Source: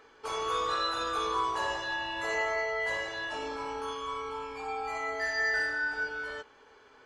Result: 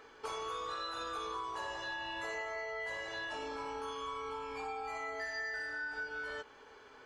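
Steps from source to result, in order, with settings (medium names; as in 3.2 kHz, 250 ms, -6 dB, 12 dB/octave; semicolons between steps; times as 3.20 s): compression, threshold -39 dBFS, peak gain reduction 12.5 dB; trim +1 dB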